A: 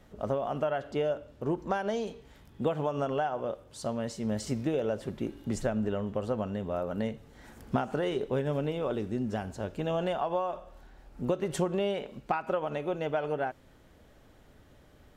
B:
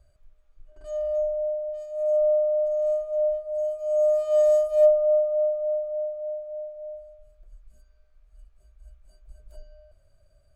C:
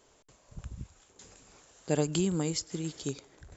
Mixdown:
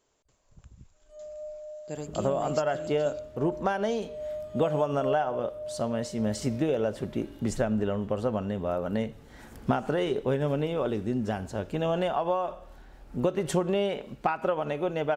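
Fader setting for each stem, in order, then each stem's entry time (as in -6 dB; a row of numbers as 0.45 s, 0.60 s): +3.0 dB, -14.5 dB, -9.5 dB; 1.95 s, 0.25 s, 0.00 s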